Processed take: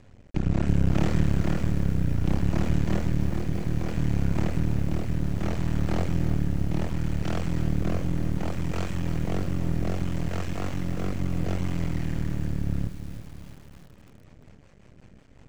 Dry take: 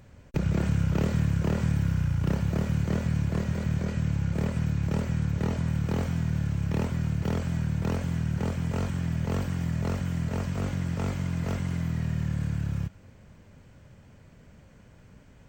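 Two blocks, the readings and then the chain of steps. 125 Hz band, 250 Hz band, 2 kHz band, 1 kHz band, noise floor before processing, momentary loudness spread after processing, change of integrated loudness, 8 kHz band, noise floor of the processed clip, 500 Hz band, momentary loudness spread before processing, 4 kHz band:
-0.5 dB, +1.0 dB, 0.0 dB, +1.5 dB, -54 dBFS, 6 LU, +0.5 dB, 0.0 dB, -52 dBFS, +1.0 dB, 4 LU, +1.5 dB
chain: Bessel low-pass 8000 Hz; notch 1500 Hz, Q 17; rotary speaker horn 0.65 Hz, later 5.5 Hz, at 13.52; half-wave rectifier; lo-fi delay 0.328 s, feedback 55%, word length 8-bit, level -11 dB; gain +6 dB

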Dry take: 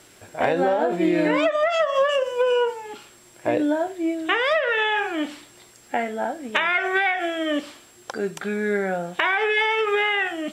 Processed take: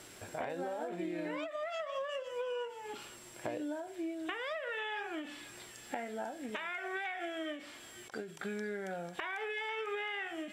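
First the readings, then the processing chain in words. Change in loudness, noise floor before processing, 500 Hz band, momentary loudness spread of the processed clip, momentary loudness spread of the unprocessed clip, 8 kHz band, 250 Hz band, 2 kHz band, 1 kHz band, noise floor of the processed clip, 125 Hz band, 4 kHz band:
-17.5 dB, -51 dBFS, -17.0 dB, 9 LU, 10 LU, -8.5 dB, -16.0 dB, -17.0 dB, -17.0 dB, -53 dBFS, -15.0 dB, -16.5 dB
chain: compressor 5:1, threshold -36 dBFS, peak gain reduction 18 dB; thin delay 0.495 s, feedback 50%, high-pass 2300 Hz, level -9 dB; ending taper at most 110 dB/s; gain -2 dB

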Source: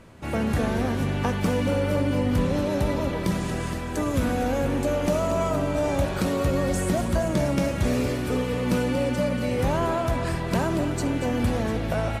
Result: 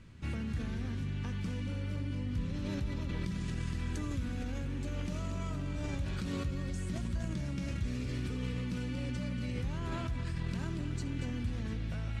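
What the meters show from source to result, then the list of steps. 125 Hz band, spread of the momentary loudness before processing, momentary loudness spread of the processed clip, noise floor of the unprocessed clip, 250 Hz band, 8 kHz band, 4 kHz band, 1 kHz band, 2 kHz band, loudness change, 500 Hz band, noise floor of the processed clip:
-8.0 dB, 3 LU, 1 LU, -30 dBFS, -13.0 dB, -15.0 dB, -11.5 dB, -19.5 dB, -13.5 dB, -12.0 dB, -22.0 dB, -37 dBFS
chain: passive tone stack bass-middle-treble 6-0-2; in parallel at +0.5 dB: negative-ratio compressor -46 dBFS, ratio -0.5; on the sum: air absorption 74 m; gain +2.5 dB

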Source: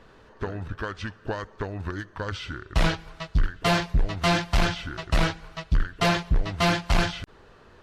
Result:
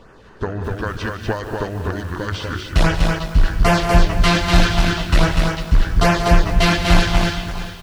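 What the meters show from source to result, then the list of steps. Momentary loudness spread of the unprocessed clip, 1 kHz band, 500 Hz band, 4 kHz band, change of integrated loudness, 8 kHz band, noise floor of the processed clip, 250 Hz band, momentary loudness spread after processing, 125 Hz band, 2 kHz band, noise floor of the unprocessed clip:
11 LU, +8.0 dB, +8.5 dB, +7.5 dB, +8.5 dB, +9.0 dB, -44 dBFS, +9.5 dB, 11 LU, +9.0 dB, +7.5 dB, -53 dBFS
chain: LFO notch sine 2.5 Hz 540–4100 Hz; tapped delay 0.149/0.184/0.245/0.588/0.656 s -14.5/-12.5/-3.5/-15/-18 dB; lo-fi delay 0.222 s, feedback 55%, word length 7-bit, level -13 dB; gain +7 dB

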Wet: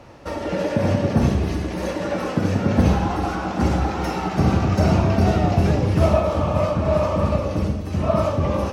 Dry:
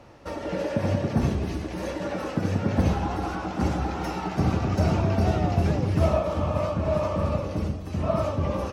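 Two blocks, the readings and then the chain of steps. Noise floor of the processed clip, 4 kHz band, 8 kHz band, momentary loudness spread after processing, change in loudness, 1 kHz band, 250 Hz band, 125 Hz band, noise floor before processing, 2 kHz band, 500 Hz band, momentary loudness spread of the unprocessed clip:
-29 dBFS, +5.5 dB, n/a, 7 LU, +5.5 dB, +5.5 dB, +6.0 dB, +5.0 dB, -35 dBFS, +5.5 dB, +5.5 dB, 7 LU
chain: Schroeder reverb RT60 0.65 s, combs from 30 ms, DRR 8 dB; gain +5 dB

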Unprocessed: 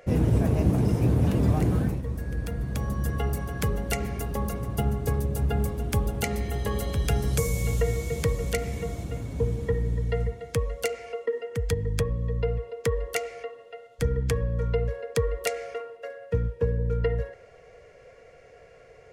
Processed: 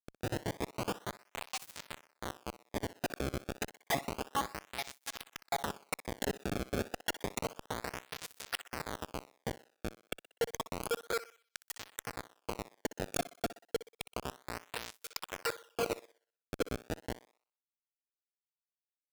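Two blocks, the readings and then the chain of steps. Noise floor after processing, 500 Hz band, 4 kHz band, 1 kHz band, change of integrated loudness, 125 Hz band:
under -85 dBFS, -10.5 dB, -1.5 dB, -2.5 dB, -12.0 dB, -21.5 dB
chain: random spectral dropouts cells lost 79%; compressor 2.5:1, threshold -40 dBFS, peak gain reduction 14.5 dB; Schmitt trigger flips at -39.5 dBFS; on a send: thinning echo 62 ms, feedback 42%, high-pass 300 Hz, level -14.5 dB; on the sum: tape flanging out of phase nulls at 0.3 Hz, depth 1.1 ms; gain +17 dB

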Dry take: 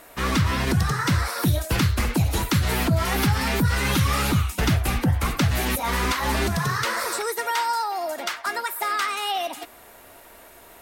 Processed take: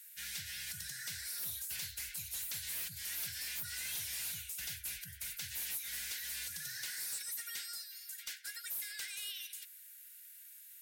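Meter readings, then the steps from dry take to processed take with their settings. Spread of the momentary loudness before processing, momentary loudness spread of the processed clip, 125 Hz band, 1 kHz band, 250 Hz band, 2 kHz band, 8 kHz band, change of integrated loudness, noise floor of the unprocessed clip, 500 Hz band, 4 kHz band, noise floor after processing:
6 LU, 8 LU, -36.0 dB, -36.5 dB, -40.0 dB, -19.0 dB, -7.5 dB, -16.5 dB, -48 dBFS, -39.5 dB, -13.5 dB, -55 dBFS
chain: brick-wall FIR band-stop 200–1400 Hz; pre-emphasis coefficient 0.97; soft clip -31 dBFS, distortion -10 dB; gain -5 dB

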